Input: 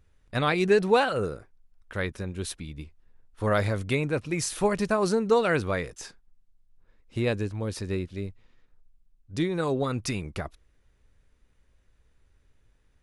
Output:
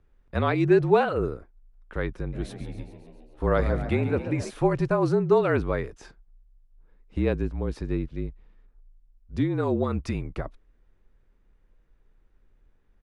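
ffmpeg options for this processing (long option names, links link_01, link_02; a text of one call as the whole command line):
ffmpeg -i in.wav -filter_complex "[0:a]asplit=3[link_01][link_02][link_03];[link_01]afade=type=out:start_time=2.32:duration=0.02[link_04];[link_02]asplit=9[link_05][link_06][link_07][link_08][link_09][link_10][link_11][link_12][link_13];[link_06]adelay=136,afreqshift=67,volume=-11.5dB[link_14];[link_07]adelay=272,afreqshift=134,volume=-15.5dB[link_15];[link_08]adelay=408,afreqshift=201,volume=-19.5dB[link_16];[link_09]adelay=544,afreqshift=268,volume=-23.5dB[link_17];[link_10]adelay=680,afreqshift=335,volume=-27.6dB[link_18];[link_11]adelay=816,afreqshift=402,volume=-31.6dB[link_19];[link_12]adelay=952,afreqshift=469,volume=-35.6dB[link_20];[link_13]adelay=1088,afreqshift=536,volume=-39.6dB[link_21];[link_05][link_14][link_15][link_16][link_17][link_18][link_19][link_20][link_21]amix=inputs=9:normalize=0,afade=type=in:start_time=2.32:duration=0.02,afade=type=out:start_time=4.49:duration=0.02[link_22];[link_03]afade=type=in:start_time=4.49:duration=0.02[link_23];[link_04][link_22][link_23]amix=inputs=3:normalize=0,afreqshift=-39,lowpass=frequency=1100:poles=1,volume=2.5dB" out.wav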